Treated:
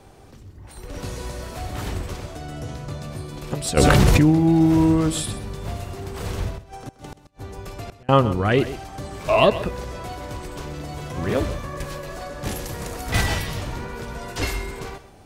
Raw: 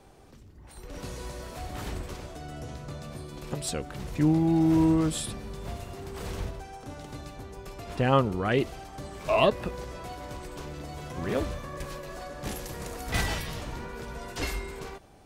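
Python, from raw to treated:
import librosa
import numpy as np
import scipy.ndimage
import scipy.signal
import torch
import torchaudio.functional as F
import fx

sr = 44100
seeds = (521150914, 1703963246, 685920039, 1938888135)

p1 = fx.peak_eq(x, sr, hz=100.0, db=6.5, octaves=0.3)
p2 = fx.gate_flip(p1, sr, shuts_db=-29.0, range_db=-33, at=(6.52, 8.09))
p3 = p2 + fx.echo_single(p2, sr, ms=129, db=-14.5, dry=0)
p4 = fx.env_flatten(p3, sr, amount_pct=100, at=(3.77, 4.3))
y = F.gain(torch.from_numpy(p4), 6.0).numpy()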